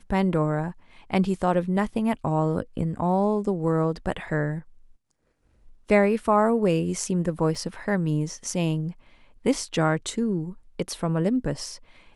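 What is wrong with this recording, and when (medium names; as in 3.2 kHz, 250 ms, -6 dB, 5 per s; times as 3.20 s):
7.55 s: dropout 3.4 ms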